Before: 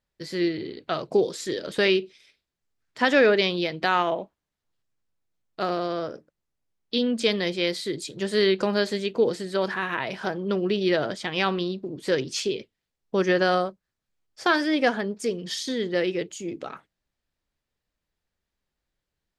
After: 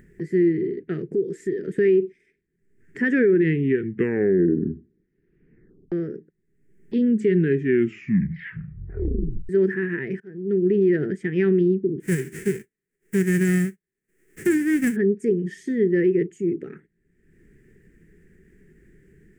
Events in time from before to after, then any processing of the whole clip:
1.01–1.59 s: compression, threshold -30 dBFS
3.03 s: tape stop 2.89 s
7.04 s: tape stop 2.45 s
10.20–10.92 s: fade in linear
12.00–14.95 s: formants flattened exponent 0.1
whole clip: FFT filter 100 Hz 0 dB, 170 Hz +11 dB, 280 Hz +4 dB, 400 Hz +13 dB, 600 Hz -21 dB, 1.1 kHz -25 dB, 1.8 kHz +3 dB, 4 kHz -30 dB, 8 kHz -10 dB, 12 kHz -16 dB; upward compressor, threshold -31 dBFS; peak limiter -11.5 dBFS

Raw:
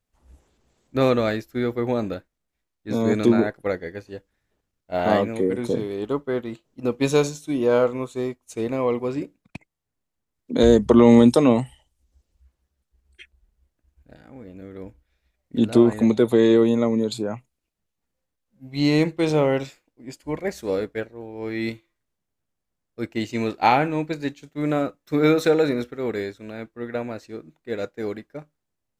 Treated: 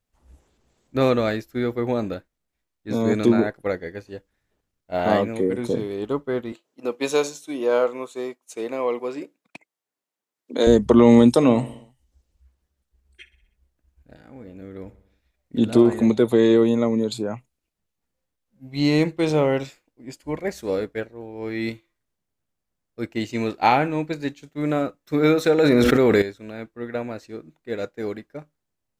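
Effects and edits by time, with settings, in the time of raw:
6.52–10.67 s: high-pass 360 Hz
11.35–16.10 s: feedback delay 62 ms, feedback 58%, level -17 dB
25.58–26.22 s: level flattener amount 100%

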